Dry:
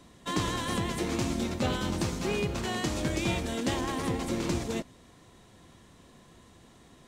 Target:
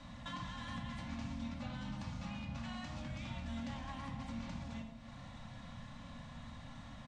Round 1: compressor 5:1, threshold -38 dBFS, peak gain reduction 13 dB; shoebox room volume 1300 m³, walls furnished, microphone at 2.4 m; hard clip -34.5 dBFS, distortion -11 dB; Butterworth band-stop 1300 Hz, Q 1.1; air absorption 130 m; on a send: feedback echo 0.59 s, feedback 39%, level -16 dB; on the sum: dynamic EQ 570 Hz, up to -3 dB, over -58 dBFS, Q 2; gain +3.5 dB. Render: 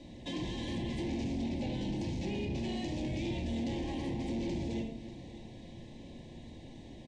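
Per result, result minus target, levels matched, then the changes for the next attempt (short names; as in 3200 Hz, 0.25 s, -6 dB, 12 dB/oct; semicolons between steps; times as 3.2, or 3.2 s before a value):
1000 Hz band -8.0 dB; compressor: peak gain reduction -8 dB
change: Butterworth band-stop 380 Hz, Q 1.1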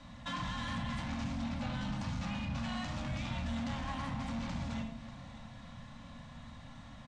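compressor: peak gain reduction -8 dB
change: compressor 5:1, threshold -48 dBFS, peak gain reduction 21 dB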